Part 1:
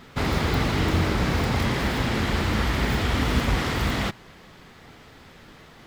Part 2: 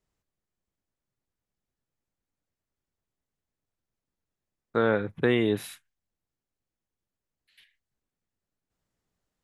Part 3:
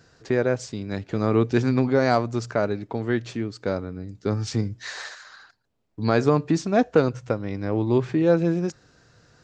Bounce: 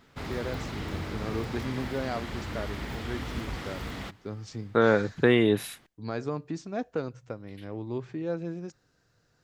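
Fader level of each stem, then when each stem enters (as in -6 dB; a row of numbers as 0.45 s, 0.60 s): -12.5 dB, +2.5 dB, -13.0 dB; 0.00 s, 0.00 s, 0.00 s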